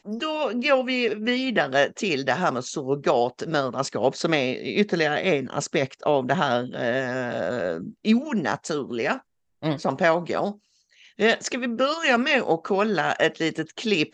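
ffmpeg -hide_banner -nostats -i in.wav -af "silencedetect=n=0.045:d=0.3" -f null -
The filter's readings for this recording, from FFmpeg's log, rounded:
silence_start: 9.17
silence_end: 9.64 | silence_duration: 0.47
silence_start: 10.51
silence_end: 11.19 | silence_duration: 0.69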